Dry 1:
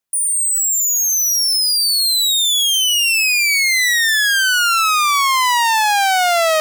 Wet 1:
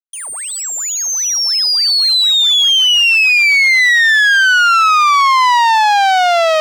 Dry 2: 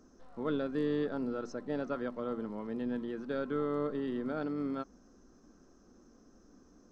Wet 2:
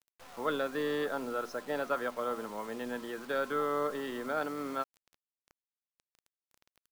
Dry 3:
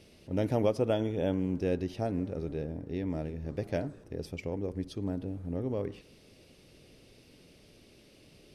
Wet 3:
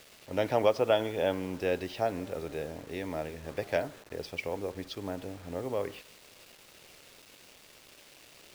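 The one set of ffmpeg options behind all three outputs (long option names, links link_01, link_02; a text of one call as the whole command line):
ffmpeg -i in.wav -filter_complex "[0:a]volume=16dB,asoftclip=hard,volume=-16dB,acrossover=split=550 5600:gain=0.158 1 0.0794[link_01][link_02][link_03];[link_01][link_02][link_03]amix=inputs=3:normalize=0,acrusher=bits=9:mix=0:aa=0.000001,volume=8.5dB" out.wav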